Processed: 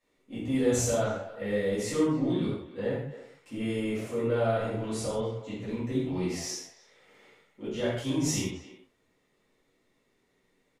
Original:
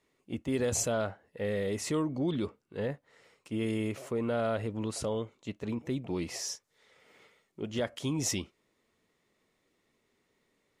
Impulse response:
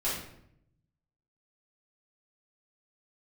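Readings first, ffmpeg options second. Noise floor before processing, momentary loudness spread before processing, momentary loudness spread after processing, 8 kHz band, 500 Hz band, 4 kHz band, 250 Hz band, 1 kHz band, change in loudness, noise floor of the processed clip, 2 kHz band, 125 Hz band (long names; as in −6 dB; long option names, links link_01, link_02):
−76 dBFS, 9 LU, 12 LU, +1.0 dB, +4.0 dB, +1.5 dB, +4.0 dB, +3.0 dB, +3.5 dB, −72 dBFS, +2.5 dB, +3.5 dB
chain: -filter_complex "[0:a]asplit=2[link_01][link_02];[link_02]adelay=270,highpass=300,lowpass=3400,asoftclip=type=hard:threshold=-26dB,volume=-14dB[link_03];[link_01][link_03]amix=inputs=2:normalize=0[link_04];[1:a]atrim=start_sample=2205,atrim=end_sample=6174,asetrate=31752,aresample=44100[link_05];[link_04][link_05]afir=irnorm=-1:irlink=0,volume=-7dB"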